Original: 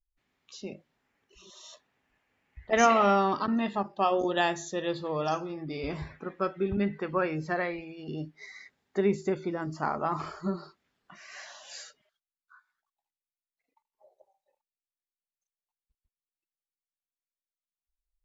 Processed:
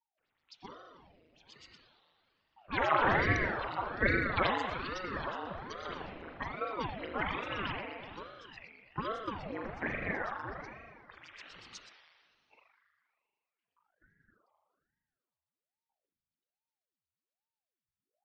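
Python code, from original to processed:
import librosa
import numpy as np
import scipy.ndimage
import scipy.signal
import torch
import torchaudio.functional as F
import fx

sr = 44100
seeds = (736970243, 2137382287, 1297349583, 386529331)

y = fx.pitch_glide(x, sr, semitones=4.5, runs='starting unshifted')
y = fx.level_steps(y, sr, step_db=9)
y = fx.filter_lfo_lowpass(y, sr, shape='sine', hz=8.1, low_hz=960.0, high_hz=4900.0, q=6.1)
y = fx.rev_spring(y, sr, rt60_s=1.9, pass_ms=(38,), chirp_ms=75, drr_db=-0.5)
y = fx.ring_lfo(y, sr, carrier_hz=500.0, swing_pct=85, hz=1.2)
y = F.gain(torch.from_numpy(y), -5.0).numpy()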